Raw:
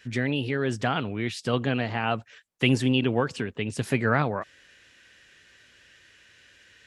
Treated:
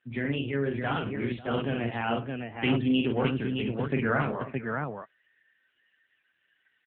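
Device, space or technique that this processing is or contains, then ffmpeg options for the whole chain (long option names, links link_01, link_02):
mobile call with aggressive noise cancelling: -filter_complex "[0:a]asplit=3[link_01][link_02][link_03];[link_01]afade=type=out:start_time=3.21:duration=0.02[link_04];[link_02]lowshelf=frequency=150:gain=4,afade=type=in:start_time=3.21:duration=0.02,afade=type=out:start_time=3.94:duration=0.02[link_05];[link_03]afade=type=in:start_time=3.94:duration=0.02[link_06];[link_04][link_05][link_06]amix=inputs=3:normalize=0,highpass=frequency=110:width=0.5412,highpass=frequency=110:width=1.3066,aecho=1:1:43|101|542|618:0.668|0.211|0.133|0.631,afftdn=noise_reduction=17:noise_floor=-43,volume=-4dB" -ar 8000 -c:a libopencore_amrnb -b:a 7950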